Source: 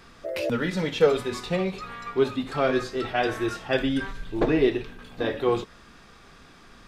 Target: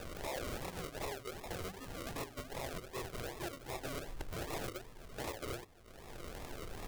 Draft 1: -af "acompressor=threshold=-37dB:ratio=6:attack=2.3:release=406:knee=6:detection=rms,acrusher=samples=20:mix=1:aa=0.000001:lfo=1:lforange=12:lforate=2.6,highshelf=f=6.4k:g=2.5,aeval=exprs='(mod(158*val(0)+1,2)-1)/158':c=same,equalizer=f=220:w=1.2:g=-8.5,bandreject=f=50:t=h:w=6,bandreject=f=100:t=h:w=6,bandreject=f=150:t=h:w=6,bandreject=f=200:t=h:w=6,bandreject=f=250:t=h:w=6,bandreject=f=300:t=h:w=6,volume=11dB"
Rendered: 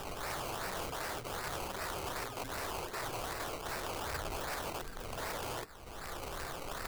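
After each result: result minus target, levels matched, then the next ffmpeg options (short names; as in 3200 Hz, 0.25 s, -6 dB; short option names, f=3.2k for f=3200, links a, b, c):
compressor: peak gain reduction -8.5 dB; decimation with a swept rate: distortion -7 dB
-af "acompressor=threshold=-47dB:ratio=6:attack=2.3:release=406:knee=6:detection=rms,acrusher=samples=20:mix=1:aa=0.000001:lfo=1:lforange=12:lforate=2.6,highshelf=f=6.4k:g=2.5,aeval=exprs='(mod(158*val(0)+1,2)-1)/158':c=same,equalizer=f=220:w=1.2:g=-8.5,bandreject=f=50:t=h:w=6,bandreject=f=100:t=h:w=6,bandreject=f=150:t=h:w=6,bandreject=f=200:t=h:w=6,bandreject=f=250:t=h:w=6,bandreject=f=300:t=h:w=6,volume=11dB"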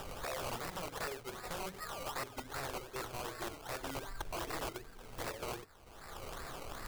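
decimation with a swept rate: distortion -7 dB
-af "acompressor=threshold=-47dB:ratio=6:attack=2.3:release=406:knee=6:detection=rms,acrusher=samples=41:mix=1:aa=0.000001:lfo=1:lforange=24.6:lforate=2.6,highshelf=f=6.4k:g=2.5,aeval=exprs='(mod(158*val(0)+1,2)-1)/158':c=same,equalizer=f=220:w=1.2:g=-8.5,bandreject=f=50:t=h:w=6,bandreject=f=100:t=h:w=6,bandreject=f=150:t=h:w=6,bandreject=f=200:t=h:w=6,bandreject=f=250:t=h:w=6,bandreject=f=300:t=h:w=6,volume=11dB"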